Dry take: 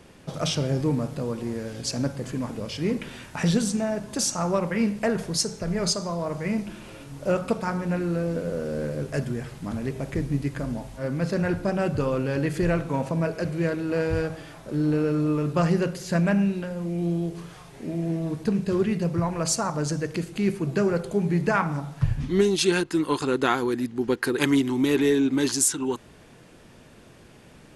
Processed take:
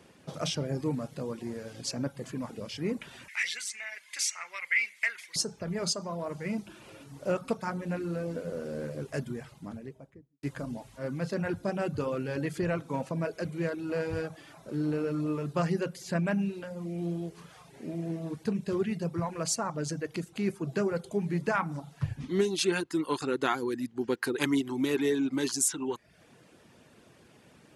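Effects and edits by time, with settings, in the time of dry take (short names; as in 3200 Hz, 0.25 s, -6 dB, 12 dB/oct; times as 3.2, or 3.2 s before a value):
3.28–5.36 resonant high-pass 2100 Hz, resonance Q 9.6
9.29–10.43 studio fade out
whole clip: reverb removal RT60 0.52 s; HPF 49 Hz; low shelf 65 Hz -11.5 dB; gain -5 dB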